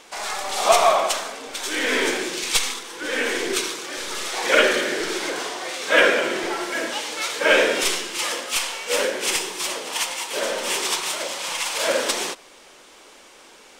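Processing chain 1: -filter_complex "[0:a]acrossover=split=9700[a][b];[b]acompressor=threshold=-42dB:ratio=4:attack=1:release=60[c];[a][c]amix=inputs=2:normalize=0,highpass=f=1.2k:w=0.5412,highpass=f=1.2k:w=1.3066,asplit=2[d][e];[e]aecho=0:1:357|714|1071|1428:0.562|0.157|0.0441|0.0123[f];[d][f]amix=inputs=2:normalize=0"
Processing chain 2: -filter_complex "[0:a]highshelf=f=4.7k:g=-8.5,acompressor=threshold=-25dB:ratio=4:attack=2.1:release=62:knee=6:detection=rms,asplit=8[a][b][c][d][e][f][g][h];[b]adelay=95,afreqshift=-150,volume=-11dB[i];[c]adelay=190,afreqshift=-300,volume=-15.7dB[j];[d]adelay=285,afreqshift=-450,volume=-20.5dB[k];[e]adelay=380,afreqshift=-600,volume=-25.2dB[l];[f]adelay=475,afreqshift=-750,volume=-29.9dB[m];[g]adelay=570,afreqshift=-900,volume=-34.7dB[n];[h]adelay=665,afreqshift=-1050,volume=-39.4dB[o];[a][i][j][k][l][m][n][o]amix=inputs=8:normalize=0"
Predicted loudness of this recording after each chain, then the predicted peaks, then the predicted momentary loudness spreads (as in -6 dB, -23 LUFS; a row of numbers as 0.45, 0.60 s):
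-23.0, -29.0 LUFS; -3.0, -15.0 dBFS; 9, 6 LU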